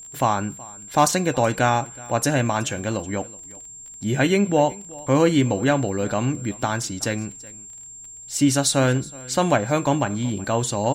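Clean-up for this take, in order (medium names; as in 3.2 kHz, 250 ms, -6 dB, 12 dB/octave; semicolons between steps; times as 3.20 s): clip repair -6.5 dBFS; de-click; band-stop 7.4 kHz, Q 30; inverse comb 373 ms -22 dB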